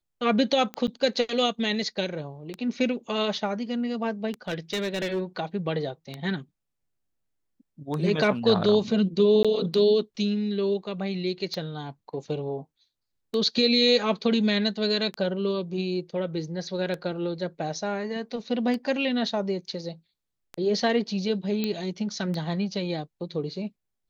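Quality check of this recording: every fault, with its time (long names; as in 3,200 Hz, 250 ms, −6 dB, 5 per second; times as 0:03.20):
scratch tick 33 1/3 rpm −19 dBFS
0:00.87–0:00.88: drop-out 8.5 ms
0:04.48–0:05.21: clipping −23.5 dBFS
0:09.43–0:09.45: drop-out 16 ms
0:21.64: click −14 dBFS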